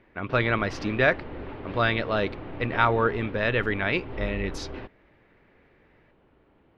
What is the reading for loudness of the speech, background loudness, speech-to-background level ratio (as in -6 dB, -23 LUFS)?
-26.0 LUFS, -39.5 LUFS, 13.5 dB